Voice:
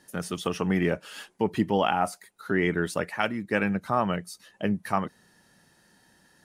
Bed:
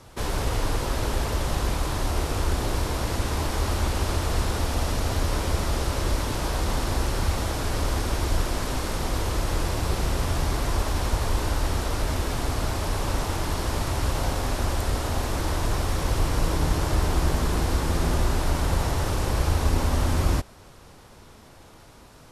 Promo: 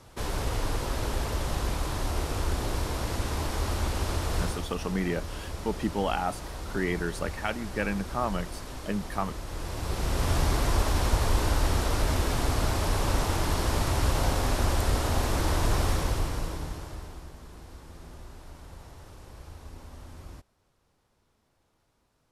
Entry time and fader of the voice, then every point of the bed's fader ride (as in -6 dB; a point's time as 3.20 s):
4.25 s, -4.5 dB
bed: 4.44 s -4 dB
4.69 s -12 dB
9.45 s -12 dB
10.32 s 0 dB
15.89 s 0 dB
17.32 s -22.5 dB